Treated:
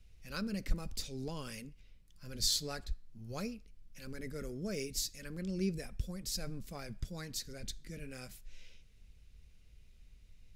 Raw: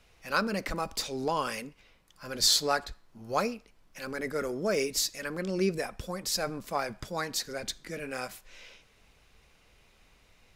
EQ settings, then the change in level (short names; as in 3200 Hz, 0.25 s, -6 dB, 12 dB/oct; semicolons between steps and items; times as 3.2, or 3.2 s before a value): passive tone stack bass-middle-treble 10-0-1; bell 310 Hz -2 dB; +13.0 dB